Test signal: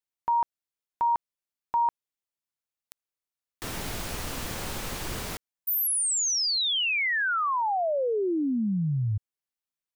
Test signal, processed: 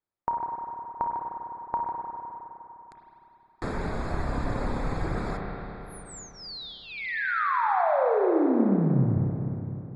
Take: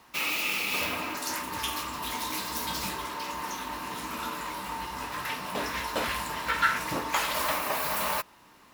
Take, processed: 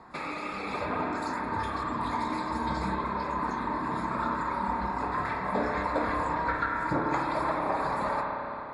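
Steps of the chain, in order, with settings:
reverb reduction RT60 2 s
downward compressor 12 to 1, threshold −32 dBFS
moving average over 15 samples
spring reverb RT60 3.4 s, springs 30/51 ms, chirp 55 ms, DRR −1 dB
level +8 dB
AAC 48 kbit/s 22,050 Hz

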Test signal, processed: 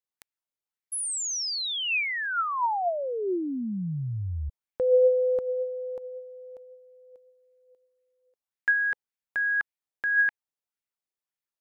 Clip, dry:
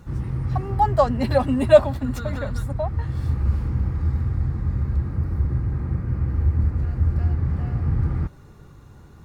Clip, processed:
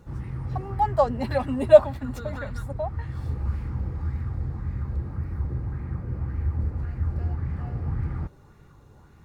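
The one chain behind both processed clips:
parametric band 850 Hz +2.5 dB 0.26 octaves
auto-filter bell 1.8 Hz 430–2,300 Hz +7 dB
level −6.5 dB

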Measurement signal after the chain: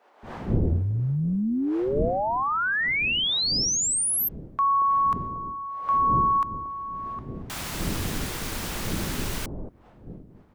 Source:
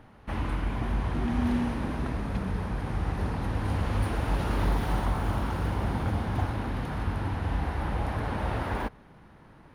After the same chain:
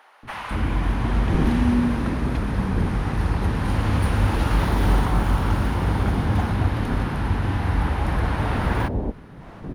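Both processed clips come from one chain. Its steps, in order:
wind on the microphone 260 Hz −42 dBFS
floating-point word with a short mantissa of 8 bits
multiband delay without the direct sound highs, lows 230 ms, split 640 Hz
level +7.5 dB

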